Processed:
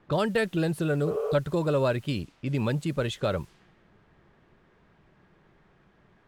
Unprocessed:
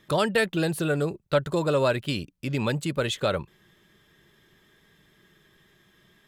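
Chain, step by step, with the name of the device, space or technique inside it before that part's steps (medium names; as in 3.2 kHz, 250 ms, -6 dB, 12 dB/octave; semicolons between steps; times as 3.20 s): spectral replace 1.10–1.32 s, 430–3300 Hz before; cassette deck with a dynamic noise filter (white noise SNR 24 dB; level-controlled noise filter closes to 1.4 kHz, open at -24.5 dBFS); tilt EQ -1.5 dB/octave; trim -3.5 dB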